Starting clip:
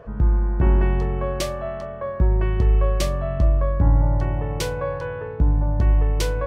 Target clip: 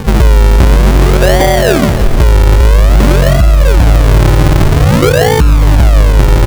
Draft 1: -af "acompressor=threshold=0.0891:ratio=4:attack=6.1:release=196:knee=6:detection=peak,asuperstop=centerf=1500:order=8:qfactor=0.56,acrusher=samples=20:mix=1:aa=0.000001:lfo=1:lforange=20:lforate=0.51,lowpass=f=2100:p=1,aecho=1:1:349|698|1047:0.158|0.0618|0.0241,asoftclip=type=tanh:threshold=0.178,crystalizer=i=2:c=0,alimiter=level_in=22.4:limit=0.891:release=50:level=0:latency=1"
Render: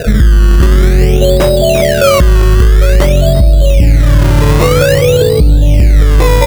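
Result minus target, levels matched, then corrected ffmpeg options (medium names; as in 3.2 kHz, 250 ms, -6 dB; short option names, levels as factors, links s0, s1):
decimation with a swept rate: distortion -8 dB
-af "acompressor=threshold=0.0891:ratio=4:attack=6.1:release=196:knee=6:detection=peak,asuperstop=centerf=1500:order=8:qfactor=0.56,acrusher=samples=65:mix=1:aa=0.000001:lfo=1:lforange=65:lforate=0.51,lowpass=f=2100:p=1,aecho=1:1:349|698|1047:0.158|0.0618|0.0241,asoftclip=type=tanh:threshold=0.178,crystalizer=i=2:c=0,alimiter=level_in=22.4:limit=0.891:release=50:level=0:latency=1"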